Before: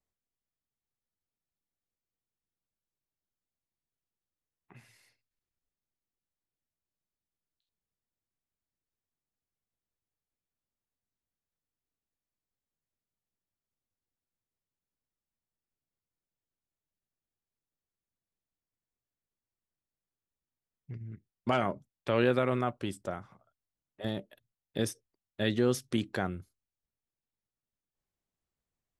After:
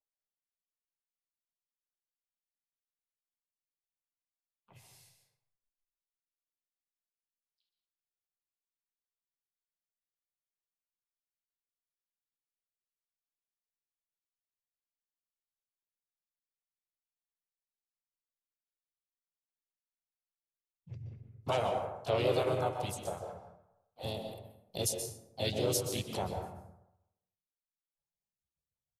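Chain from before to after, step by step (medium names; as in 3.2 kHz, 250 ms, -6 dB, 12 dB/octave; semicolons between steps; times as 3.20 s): spectral noise reduction 21 dB; treble shelf 3.5 kHz +9.5 dB; static phaser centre 670 Hz, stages 4; on a send at -5 dB: reverberation RT60 0.90 s, pre-delay 117 ms; on the sum: harmony voices -4 st -6 dB, +3 st -7 dB, +4 st -11 dB; trim -2.5 dB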